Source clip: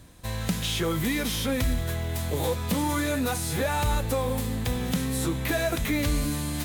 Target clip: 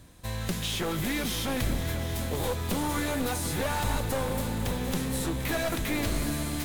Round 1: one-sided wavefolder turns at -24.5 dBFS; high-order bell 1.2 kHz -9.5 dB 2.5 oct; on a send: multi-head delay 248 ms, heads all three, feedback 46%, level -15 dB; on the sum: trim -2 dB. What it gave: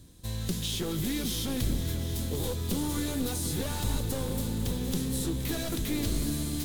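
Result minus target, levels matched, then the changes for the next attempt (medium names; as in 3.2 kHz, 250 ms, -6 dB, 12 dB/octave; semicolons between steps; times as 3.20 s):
1 kHz band -8.0 dB
remove: high-order bell 1.2 kHz -9.5 dB 2.5 oct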